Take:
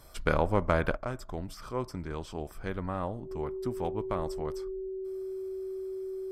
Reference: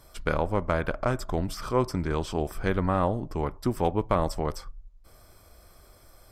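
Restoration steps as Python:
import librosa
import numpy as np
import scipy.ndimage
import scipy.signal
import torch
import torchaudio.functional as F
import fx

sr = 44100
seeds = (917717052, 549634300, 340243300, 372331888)

y = fx.notch(x, sr, hz=380.0, q=30.0)
y = fx.gain(y, sr, db=fx.steps((0.0, 0.0), (0.97, 9.0)))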